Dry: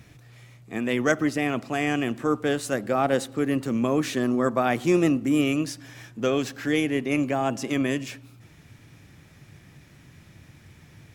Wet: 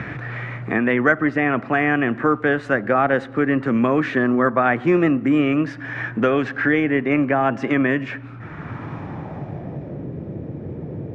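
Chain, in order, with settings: low-pass sweep 1.7 kHz -> 480 Hz, 8.23–10.09 s; three bands compressed up and down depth 70%; trim +4.5 dB

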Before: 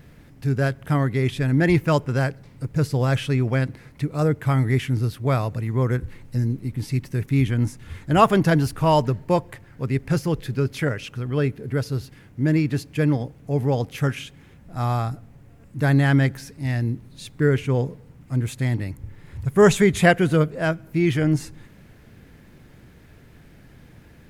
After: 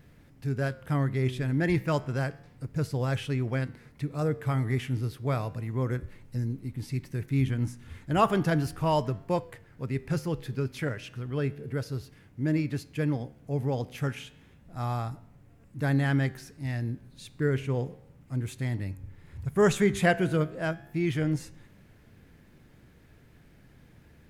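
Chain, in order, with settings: flange 0.32 Hz, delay 9.6 ms, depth 7.2 ms, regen +89%; trim -3 dB

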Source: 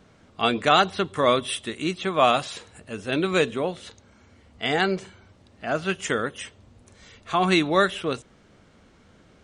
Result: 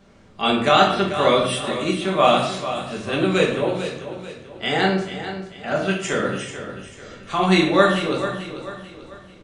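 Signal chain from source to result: on a send: feedback delay 441 ms, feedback 40%, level -11 dB; on the sum: simulated room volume 150 m³, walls mixed, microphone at 1.2 m; trim -1 dB

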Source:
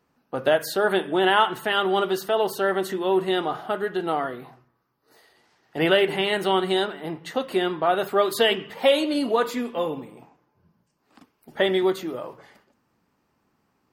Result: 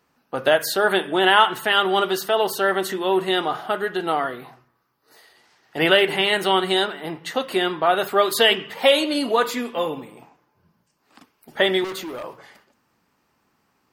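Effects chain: 11.84–12.24 s: overload inside the chain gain 30 dB; tilt shelf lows -3.5 dB, about 800 Hz; trim +3 dB

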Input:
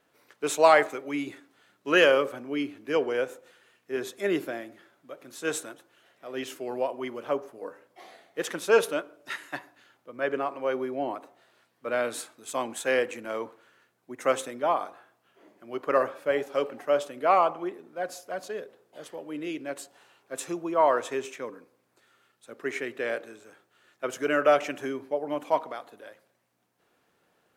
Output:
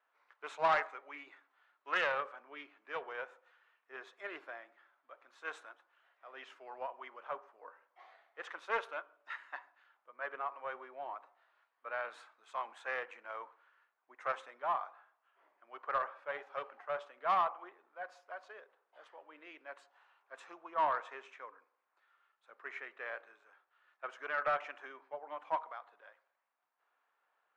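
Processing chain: ladder band-pass 1.3 kHz, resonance 30%; saturation -24.5 dBFS, distortion -18 dB; loudspeaker Doppler distortion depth 0.19 ms; trim +3.5 dB

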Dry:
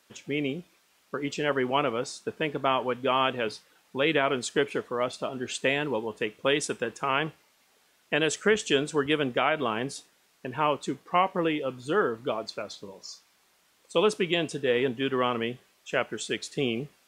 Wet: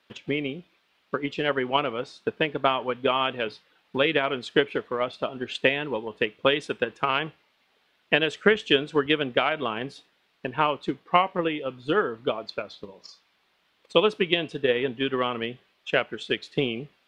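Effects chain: transient shaper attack +8 dB, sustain 0 dB; resonant high shelf 5.1 kHz -12.5 dB, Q 1.5; trim -2 dB

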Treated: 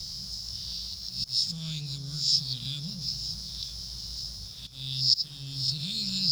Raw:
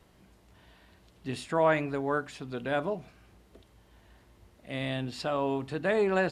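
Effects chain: reverse spectral sustain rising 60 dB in 0.55 s; elliptic band-stop 160–4100 Hz, stop band 40 dB; treble shelf 2.4 kHz +11.5 dB; reverse; upward compressor, threshold -41 dBFS; reverse; slow attack 462 ms; compression 3:1, threshold -41 dBFS, peak gain reduction 7.5 dB; resonant low-pass 5.2 kHz, resonance Q 11; crossover distortion -57.5 dBFS; on a send: echo whose repeats swap between lows and highs 478 ms, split 900 Hz, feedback 70%, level -10.5 dB; on the sum: trim +7.5 dB

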